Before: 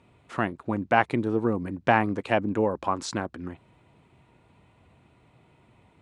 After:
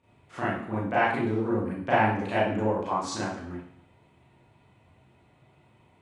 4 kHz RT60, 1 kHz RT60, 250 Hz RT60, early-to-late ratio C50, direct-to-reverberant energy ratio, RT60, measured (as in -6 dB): 0.60 s, 0.60 s, 0.60 s, 0.5 dB, -10.0 dB, 0.60 s